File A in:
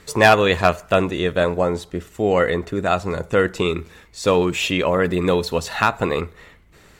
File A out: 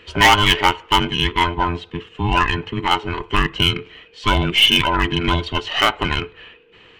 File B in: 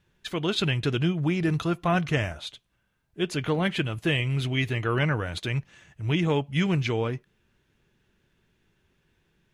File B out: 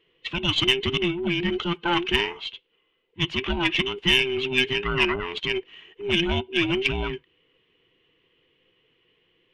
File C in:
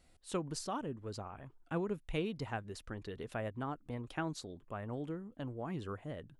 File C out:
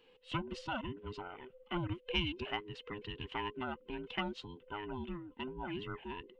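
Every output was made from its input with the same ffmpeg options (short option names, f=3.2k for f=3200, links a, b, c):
-af "afftfilt=real='real(if(between(b,1,1008),(2*floor((b-1)/24)+1)*24-b,b),0)':imag='imag(if(between(b,1,1008),(2*floor((b-1)/24)+1)*24-b,b),0)*if(between(b,1,1008),-1,1)':win_size=2048:overlap=0.75,lowpass=f=2.9k:t=q:w=5.5,aeval=exprs='0.501*(cos(1*acos(clip(val(0)/0.501,-1,1)))-cos(1*PI/2))+0.0251*(cos(3*acos(clip(val(0)/0.501,-1,1)))-cos(3*PI/2))+0.0282*(cos(4*acos(clip(val(0)/0.501,-1,1)))-cos(4*PI/2))':c=same"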